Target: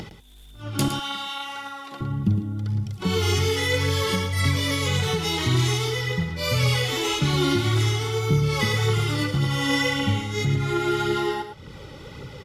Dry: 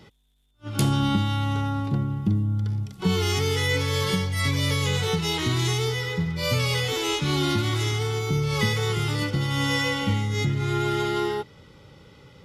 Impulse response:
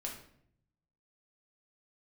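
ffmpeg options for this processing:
-filter_complex "[0:a]asettb=1/sr,asplit=3[link_01][link_02][link_03];[link_01]atrim=end=0.884[link_04];[link_02]atrim=start=0.88:end=2.01,asetpts=PTS-STARTPTS,afade=type=in:duration=0.004:curve=qsin,afade=type=out:start_time=1.126:duration=0.004:curve=qsin,highpass=890[link_05];[link_03]atrim=start=2.006[link_06];[link_04][link_05]acrossfade=duration=0.004:curve1=hsin:curve2=qsin[link_07];[link_07][link_06]acrossfade=duration=0.004:curve1=qsin:curve2=hsin,acompressor=mode=upward:threshold=-31dB:ratio=2.5,aphaser=in_gain=1:out_gain=1:delay=3.8:decay=0.43:speed=1.8:type=triangular,aecho=1:1:111:0.355"

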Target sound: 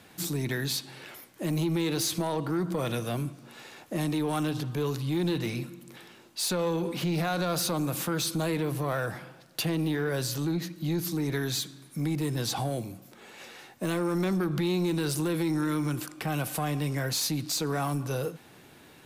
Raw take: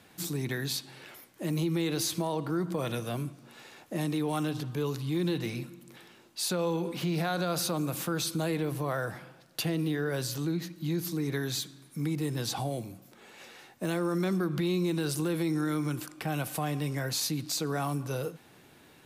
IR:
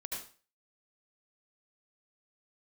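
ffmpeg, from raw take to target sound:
-af "asoftclip=type=tanh:threshold=-24.5dB,volume=3.5dB"

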